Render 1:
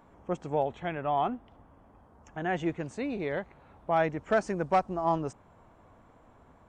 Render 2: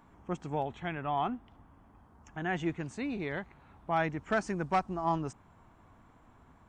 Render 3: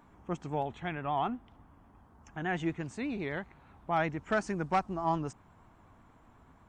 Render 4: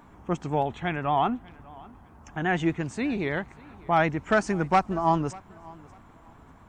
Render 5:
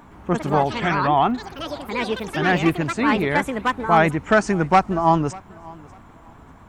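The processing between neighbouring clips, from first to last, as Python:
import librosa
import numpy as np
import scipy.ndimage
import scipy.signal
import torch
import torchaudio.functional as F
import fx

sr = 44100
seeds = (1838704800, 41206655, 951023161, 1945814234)

y1 = fx.peak_eq(x, sr, hz=540.0, db=-9.0, octaves=0.83)
y2 = fx.vibrato(y1, sr, rate_hz=8.2, depth_cents=51.0)
y3 = fx.echo_feedback(y2, sr, ms=593, feedback_pct=24, wet_db=-23.0)
y3 = F.gain(torch.from_numpy(y3), 7.5).numpy()
y4 = fx.echo_pitch(y3, sr, ms=116, semitones=5, count=3, db_per_echo=-6.0)
y4 = F.gain(torch.from_numpy(y4), 6.0).numpy()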